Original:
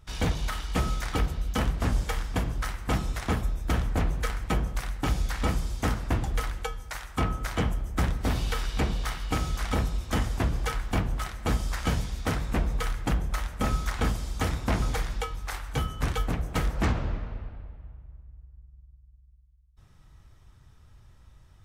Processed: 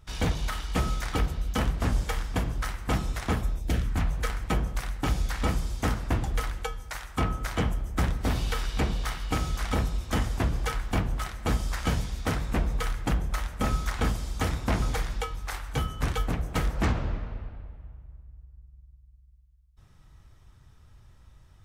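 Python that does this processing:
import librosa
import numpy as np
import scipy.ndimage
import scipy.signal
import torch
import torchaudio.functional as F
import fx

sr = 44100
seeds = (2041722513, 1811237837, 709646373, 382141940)

y = fx.peak_eq(x, sr, hz=fx.line((3.58, 1800.0), (4.18, 260.0)), db=-14.0, octaves=0.77, at=(3.58, 4.18), fade=0.02)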